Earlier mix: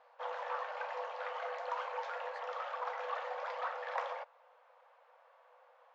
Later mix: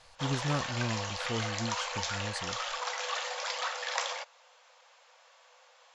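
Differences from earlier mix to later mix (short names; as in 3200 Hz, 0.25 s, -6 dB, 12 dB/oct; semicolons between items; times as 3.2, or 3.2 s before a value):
speech: remove elliptic high-pass 880 Hz, stop band 50 dB; master: remove LPF 1200 Hz 12 dB/oct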